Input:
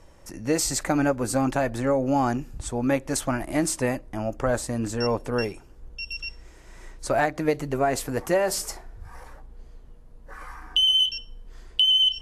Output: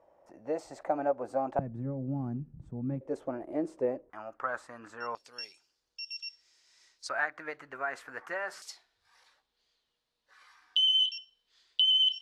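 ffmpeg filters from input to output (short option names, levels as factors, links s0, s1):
-af "asetnsamples=n=441:p=0,asendcmd='1.59 bandpass f 160;3.01 bandpass f 450;4.1 bandpass f 1300;5.15 bandpass f 4700;7.09 bandpass f 1500;8.62 bandpass f 3900',bandpass=f=670:t=q:w=3:csg=0"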